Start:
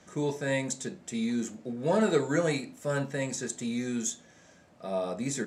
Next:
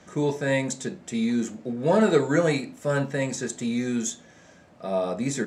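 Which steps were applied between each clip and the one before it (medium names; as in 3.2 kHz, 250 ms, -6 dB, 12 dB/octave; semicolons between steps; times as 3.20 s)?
treble shelf 5.4 kHz -6 dB; trim +5.5 dB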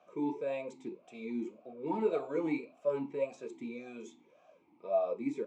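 talking filter a-u 1.8 Hz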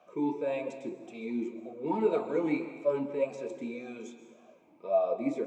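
reverberation RT60 1.3 s, pre-delay 118 ms, DRR 10 dB; trim +3.5 dB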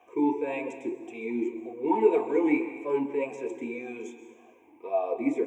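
static phaser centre 890 Hz, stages 8; trim +7 dB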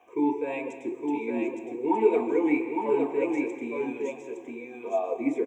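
delay 863 ms -4 dB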